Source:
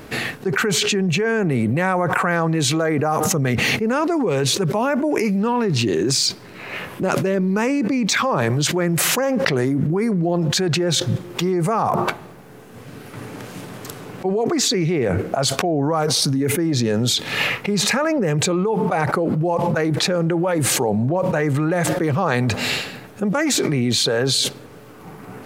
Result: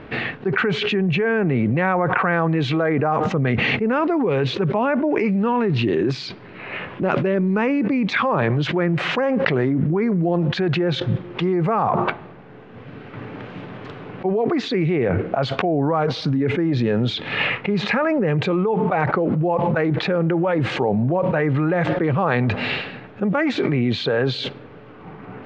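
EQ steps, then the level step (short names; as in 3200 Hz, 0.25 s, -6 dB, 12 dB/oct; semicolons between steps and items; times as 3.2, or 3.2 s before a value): LPF 3200 Hz 24 dB/oct; 0.0 dB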